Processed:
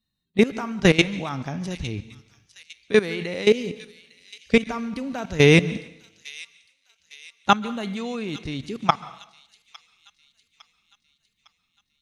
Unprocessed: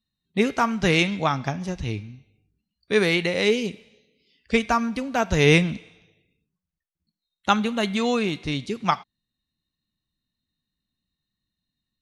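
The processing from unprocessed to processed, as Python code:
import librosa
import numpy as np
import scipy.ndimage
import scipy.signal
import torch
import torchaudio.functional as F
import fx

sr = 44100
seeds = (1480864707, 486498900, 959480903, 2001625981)

p1 = fx.dynamic_eq(x, sr, hz=270.0, q=0.78, threshold_db=-32.0, ratio=4.0, max_db=3)
p2 = fx.level_steps(p1, sr, step_db=17)
p3 = p2 + fx.echo_wet_highpass(p2, sr, ms=856, feedback_pct=49, hz=3400.0, wet_db=-12.0, dry=0)
p4 = fx.rev_plate(p3, sr, seeds[0], rt60_s=0.74, hf_ratio=1.0, predelay_ms=120, drr_db=18.5)
y = p4 * 10.0 ** (4.5 / 20.0)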